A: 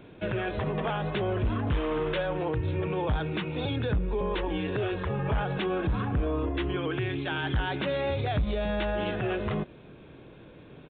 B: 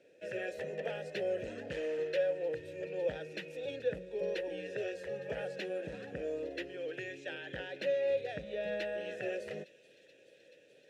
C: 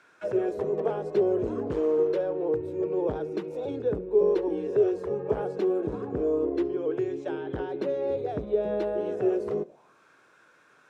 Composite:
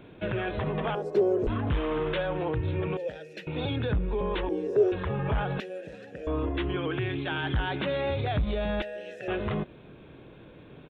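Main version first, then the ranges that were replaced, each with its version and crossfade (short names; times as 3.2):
A
0.95–1.47 from C
2.97–3.47 from B
4.49–4.92 from C
5.6–6.27 from B
8.82–9.28 from B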